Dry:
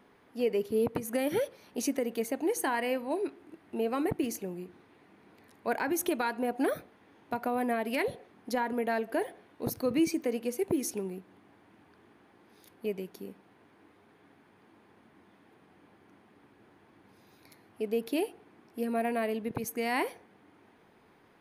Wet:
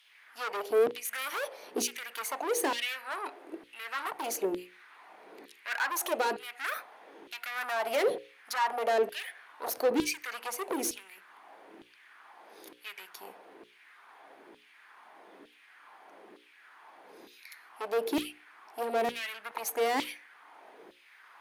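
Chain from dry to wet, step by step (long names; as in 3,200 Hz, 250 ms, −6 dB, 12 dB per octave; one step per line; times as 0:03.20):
tube saturation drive 35 dB, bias 0.35
auto-filter high-pass saw down 1.1 Hz 320–3,400 Hz
mains-hum notches 60/120/180/240/300/360/420/480/540 Hz
level +7.5 dB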